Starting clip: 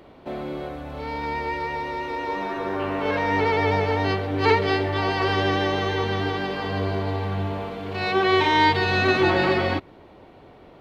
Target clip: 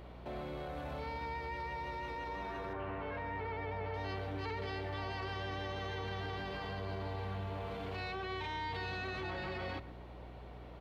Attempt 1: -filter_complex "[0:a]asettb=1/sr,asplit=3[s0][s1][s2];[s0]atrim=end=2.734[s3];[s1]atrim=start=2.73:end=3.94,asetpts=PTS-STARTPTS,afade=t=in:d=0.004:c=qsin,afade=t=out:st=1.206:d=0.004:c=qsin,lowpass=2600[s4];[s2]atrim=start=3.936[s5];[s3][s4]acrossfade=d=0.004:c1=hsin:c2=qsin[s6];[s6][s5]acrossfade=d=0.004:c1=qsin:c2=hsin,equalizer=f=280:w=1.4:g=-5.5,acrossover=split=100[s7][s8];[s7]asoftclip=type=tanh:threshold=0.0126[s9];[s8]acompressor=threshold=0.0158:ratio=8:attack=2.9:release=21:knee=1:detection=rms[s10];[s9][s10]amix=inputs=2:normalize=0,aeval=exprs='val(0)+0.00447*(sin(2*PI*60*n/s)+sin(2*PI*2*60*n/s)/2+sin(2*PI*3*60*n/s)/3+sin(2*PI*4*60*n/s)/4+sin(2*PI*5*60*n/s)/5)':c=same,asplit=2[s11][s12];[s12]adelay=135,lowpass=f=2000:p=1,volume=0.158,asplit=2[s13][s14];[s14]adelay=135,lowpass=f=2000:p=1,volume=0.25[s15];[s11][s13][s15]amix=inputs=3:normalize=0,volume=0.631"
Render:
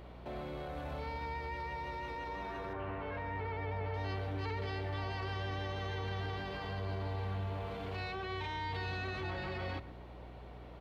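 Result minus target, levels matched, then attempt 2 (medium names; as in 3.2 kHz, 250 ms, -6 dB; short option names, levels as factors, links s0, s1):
saturation: distortion -6 dB
-filter_complex "[0:a]asettb=1/sr,asplit=3[s0][s1][s2];[s0]atrim=end=2.734[s3];[s1]atrim=start=2.73:end=3.94,asetpts=PTS-STARTPTS,afade=t=in:d=0.004:c=qsin,afade=t=out:st=1.206:d=0.004:c=qsin,lowpass=2600[s4];[s2]atrim=start=3.936[s5];[s3][s4]acrossfade=d=0.004:c1=hsin:c2=qsin[s6];[s6][s5]acrossfade=d=0.004:c1=qsin:c2=hsin,equalizer=f=280:w=1.4:g=-5.5,acrossover=split=100[s7][s8];[s7]asoftclip=type=tanh:threshold=0.00473[s9];[s8]acompressor=threshold=0.0158:ratio=8:attack=2.9:release=21:knee=1:detection=rms[s10];[s9][s10]amix=inputs=2:normalize=0,aeval=exprs='val(0)+0.00447*(sin(2*PI*60*n/s)+sin(2*PI*2*60*n/s)/2+sin(2*PI*3*60*n/s)/3+sin(2*PI*4*60*n/s)/4+sin(2*PI*5*60*n/s)/5)':c=same,asplit=2[s11][s12];[s12]adelay=135,lowpass=f=2000:p=1,volume=0.158,asplit=2[s13][s14];[s14]adelay=135,lowpass=f=2000:p=1,volume=0.25[s15];[s11][s13][s15]amix=inputs=3:normalize=0,volume=0.631"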